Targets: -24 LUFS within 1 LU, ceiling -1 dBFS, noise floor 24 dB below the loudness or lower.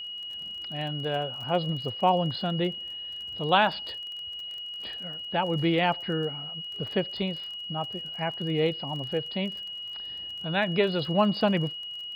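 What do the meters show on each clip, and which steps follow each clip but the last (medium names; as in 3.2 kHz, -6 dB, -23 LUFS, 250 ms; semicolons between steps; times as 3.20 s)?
tick rate 29 per s; steady tone 2.9 kHz; tone level -35 dBFS; loudness -29.0 LUFS; peak level -8.0 dBFS; loudness target -24.0 LUFS
-> de-click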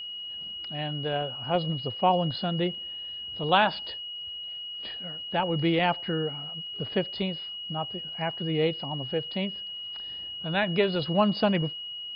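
tick rate 0 per s; steady tone 2.9 kHz; tone level -35 dBFS
-> band-stop 2.9 kHz, Q 30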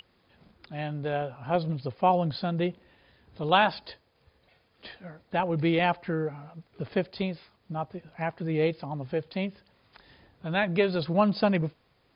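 steady tone not found; loudness -28.5 LUFS; peak level -8.5 dBFS; loudness target -24.0 LUFS
-> trim +4.5 dB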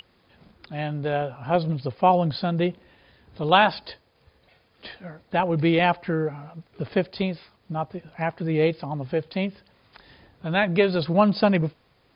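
loudness -24.0 LUFS; peak level -4.0 dBFS; noise floor -63 dBFS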